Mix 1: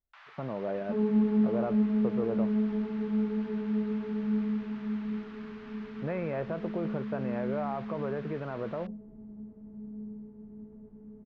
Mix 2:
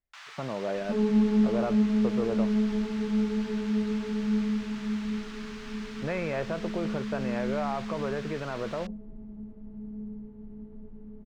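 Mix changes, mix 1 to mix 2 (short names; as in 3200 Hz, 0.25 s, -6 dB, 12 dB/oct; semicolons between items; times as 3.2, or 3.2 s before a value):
second sound: remove HPF 140 Hz 6 dB/oct; master: remove tape spacing loss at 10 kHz 36 dB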